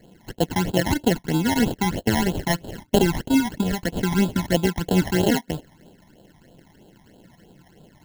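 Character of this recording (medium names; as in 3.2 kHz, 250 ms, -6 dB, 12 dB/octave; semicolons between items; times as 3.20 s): aliases and images of a low sample rate 1.2 kHz, jitter 0%; phasing stages 12, 3.1 Hz, lowest notch 450–2000 Hz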